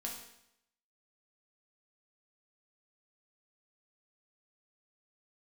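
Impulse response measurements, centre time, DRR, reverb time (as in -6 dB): 37 ms, -1.5 dB, 0.80 s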